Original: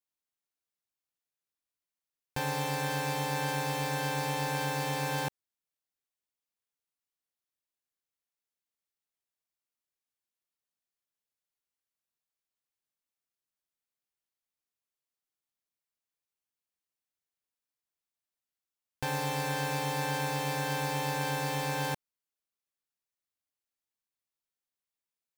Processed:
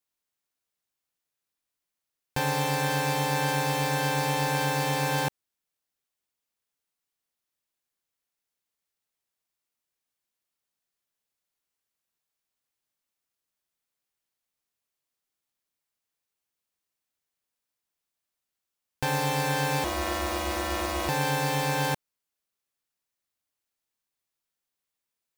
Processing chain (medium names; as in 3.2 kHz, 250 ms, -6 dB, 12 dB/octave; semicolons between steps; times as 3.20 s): 19.84–21.09 s: ring modulator 210 Hz; trim +5.5 dB